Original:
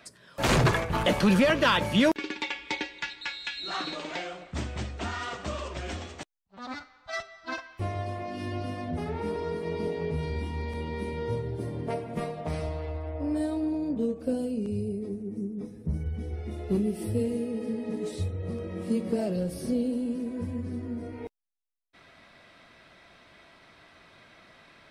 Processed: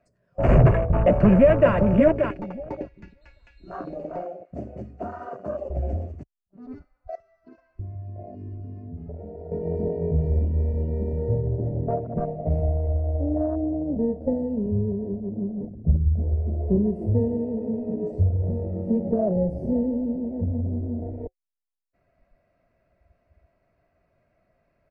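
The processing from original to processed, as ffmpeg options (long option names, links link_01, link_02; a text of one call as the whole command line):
ffmpeg -i in.wav -filter_complex "[0:a]asplit=2[link_01][link_02];[link_02]afade=type=in:start_time=0.64:duration=0.01,afade=type=out:start_time=1.72:duration=0.01,aecho=0:1:580|1160|1740:0.530884|0.106177|0.0212354[link_03];[link_01][link_03]amix=inputs=2:normalize=0,asettb=1/sr,asplit=3[link_04][link_05][link_06];[link_04]atrim=end=4.254[link_07];[link_05]atrim=start=4.25:end=5.7,asetpts=PTS-STARTPTS,afade=type=in:duration=0.004:curve=qsin,afade=type=out:start_time=1.446:duration=0.004:curve=qsin,highpass=220[link_08];[link_06]atrim=start=5.696[link_09];[link_07][link_08]acrossfade=duration=0.004:curve1=hsin:curve2=qsin[link_10];[link_10][link_09]acrossfade=duration=0.004:curve1=qsin:curve2=hsin,asettb=1/sr,asplit=3[link_11][link_12][link_13];[link_11]atrim=end=7.154[link_14];[link_12]atrim=start=7.15:end=9.52,asetpts=PTS-STARTPTS,afade=type=in:duration=0.004:curve=qsin,afade=type=out:start_time=2.366:duration=0.004:curve=qsin,acompressor=threshold=-39dB:ratio=8:attack=3.2:release=140:knee=1:detection=peak[link_15];[link_13]atrim=start=9.516[link_16];[link_14][link_15]acrossfade=duration=0.004:curve1=hsin:curve2=qsin[link_17];[link_17][link_16]acrossfade=duration=0.004:curve1=qsin:curve2=hsin,aemphasis=mode=reproduction:type=riaa,afwtdn=0.0282,superequalizer=7b=1.58:8b=3.16:13b=0.282:15b=1.58,volume=-3dB" out.wav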